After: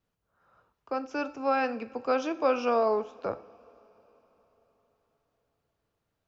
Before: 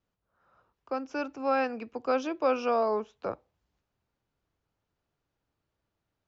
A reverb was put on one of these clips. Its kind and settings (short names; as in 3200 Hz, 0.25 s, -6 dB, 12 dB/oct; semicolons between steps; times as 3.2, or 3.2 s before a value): two-slope reverb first 0.47 s, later 4.4 s, from -21 dB, DRR 10.5 dB; gain +1 dB